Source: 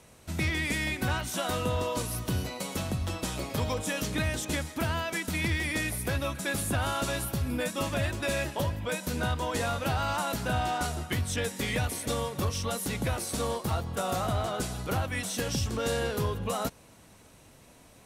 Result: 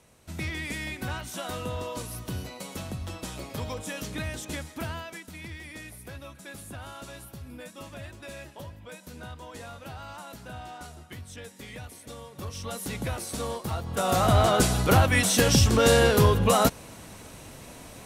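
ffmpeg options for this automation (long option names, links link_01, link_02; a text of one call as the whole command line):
ffmpeg -i in.wav -af "volume=18.5dB,afade=type=out:start_time=4.85:duration=0.41:silence=0.398107,afade=type=in:start_time=12.27:duration=0.62:silence=0.298538,afade=type=in:start_time=13.81:duration=0.66:silence=0.251189" out.wav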